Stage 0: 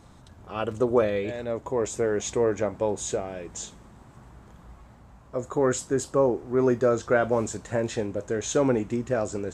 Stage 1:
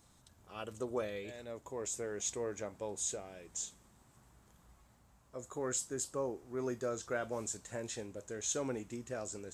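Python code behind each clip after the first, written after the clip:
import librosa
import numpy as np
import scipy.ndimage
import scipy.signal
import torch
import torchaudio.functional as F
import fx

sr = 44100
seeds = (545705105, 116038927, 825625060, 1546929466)

y = librosa.effects.preemphasis(x, coef=0.8, zi=[0.0])
y = y * 10.0 ** (-2.0 / 20.0)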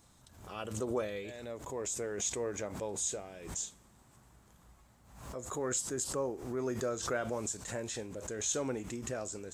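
y = fx.pre_swell(x, sr, db_per_s=71.0)
y = y * 10.0 ** (2.0 / 20.0)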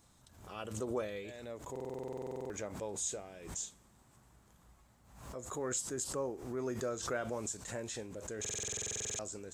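y = fx.buffer_glitch(x, sr, at_s=(1.71, 8.4), block=2048, repeats=16)
y = y * 10.0 ** (-2.5 / 20.0)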